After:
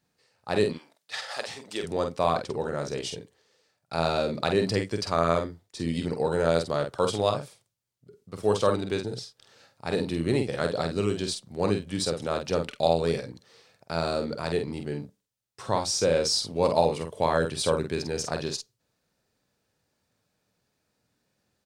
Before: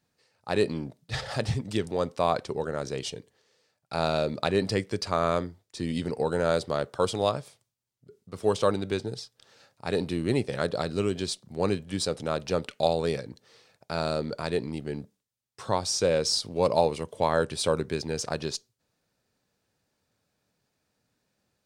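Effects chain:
0:00.72–0:01.82: high-pass filter 1,400 Hz → 420 Hz 12 dB per octave
double-tracking delay 48 ms −6 dB

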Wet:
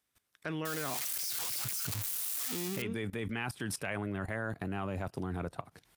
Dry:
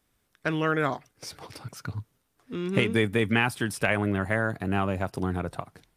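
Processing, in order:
0:00.65–0:02.82: spike at every zero crossing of −14.5 dBFS
high-pass filter 46 Hz 24 dB per octave
output level in coarse steps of 18 dB
one half of a high-frequency compander encoder only

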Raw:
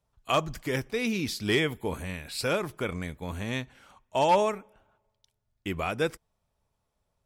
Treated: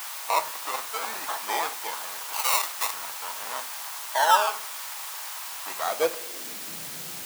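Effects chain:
high-shelf EQ 7,900 Hz +8 dB
sample-and-hold swept by an LFO 22×, swing 60% 0.45 Hz
0:02.33–0:02.94: spectral tilt +4.5 dB per octave
bit-depth reduction 6 bits, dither triangular
high-pass filter sweep 930 Hz → 150 Hz, 0:05.75–0:06.83
convolution reverb RT60 0.50 s, pre-delay 6 ms, DRR 10 dB
level −1 dB

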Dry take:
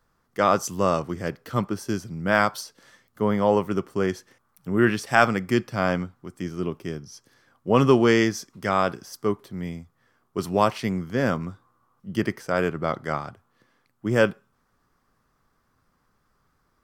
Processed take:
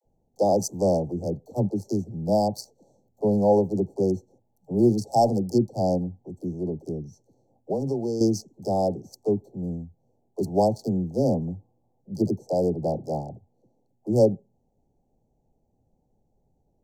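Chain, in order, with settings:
adaptive Wiener filter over 9 samples
all-pass dispersion lows, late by 51 ms, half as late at 330 Hz
0:05.97–0:08.21: downward compressor 8 to 1, threshold −25 dBFS, peak gain reduction 12.5 dB
Chebyshev band-stop filter 830–4,400 Hz, order 5
level +2 dB

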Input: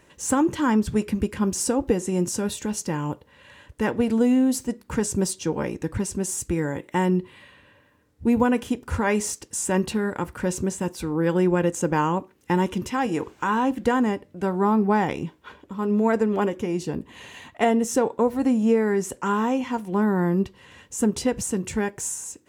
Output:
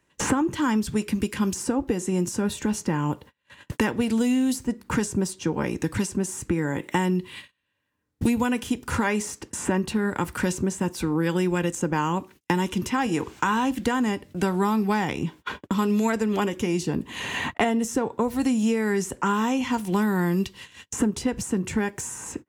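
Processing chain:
noise gate −45 dBFS, range −41 dB
parametric band 540 Hz −5 dB 0.85 octaves
multiband upward and downward compressor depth 100%
level −1 dB

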